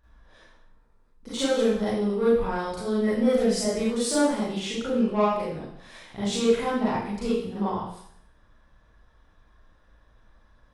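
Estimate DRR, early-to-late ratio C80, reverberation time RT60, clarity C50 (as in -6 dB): -10.0 dB, 3.5 dB, 0.65 s, -2.0 dB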